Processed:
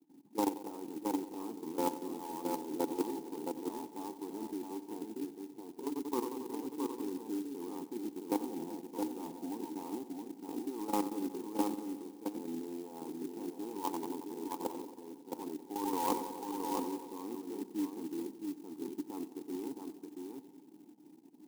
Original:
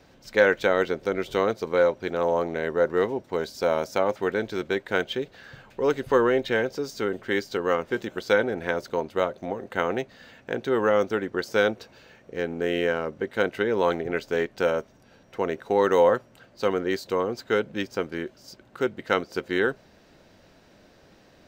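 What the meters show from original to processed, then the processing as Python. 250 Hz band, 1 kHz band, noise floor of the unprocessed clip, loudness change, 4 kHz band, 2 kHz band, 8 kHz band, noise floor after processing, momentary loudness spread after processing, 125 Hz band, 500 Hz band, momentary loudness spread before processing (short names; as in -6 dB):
-5.5 dB, -10.0 dB, -56 dBFS, -14.0 dB, -16.0 dB, -29.0 dB, n/a, -57 dBFS, 9 LU, -18.5 dB, -18.5 dB, 9 LU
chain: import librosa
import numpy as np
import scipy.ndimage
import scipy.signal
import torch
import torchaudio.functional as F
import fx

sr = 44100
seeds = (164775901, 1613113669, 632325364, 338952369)

p1 = scipy.signal.medfilt(x, 25)
p2 = fx.graphic_eq_10(p1, sr, hz=(1000, 2000, 4000), db=(6, -7, -10))
p3 = fx.env_lowpass(p2, sr, base_hz=480.0, full_db=-7.5)
p4 = scipy.signal.sosfilt(scipy.signal.butter(4, 150.0, 'highpass', fs=sr, output='sos'), p3)
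p5 = fx.level_steps(p4, sr, step_db=20)
p6 = fx.vowel_filter(p5, sr, vowel='u')
p7 = p6 + fx.echo_filtered(p6, sr, ms=91, feedback_pct=76, hz=1700.0, wet_db=-14, dry=0)
p8 = fx.over_compress(p7, sr, threshold_db=-40.0, ratio=-1.0)
p9 = p8 + 10.0 ** (-4.5 / 20.0) * np.pad(p8, (int(669 * sr / 1000.0), 0))[:len(p8)]
p10 = fx.clock_jitter(p9, sr, seeds[0], jitter_ms=0.061)
y = F.gain(torch.from_numpy(p10), 9.5).numpy()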